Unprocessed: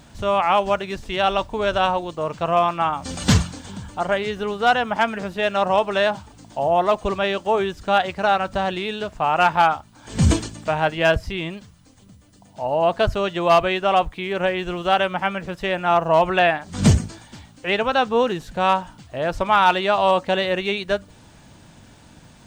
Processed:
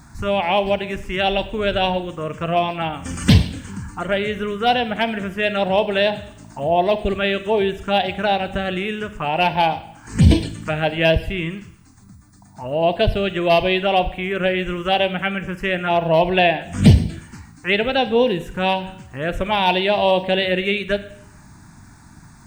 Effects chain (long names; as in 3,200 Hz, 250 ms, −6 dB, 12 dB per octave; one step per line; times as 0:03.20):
phaser swept by the level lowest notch 510 Hz, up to 1,300 Hz, full sweep at −15 dBFS
four-comb reverb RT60 0.71 s, combs from 33 ms, DRR 12.5 dB
level +4.5 dB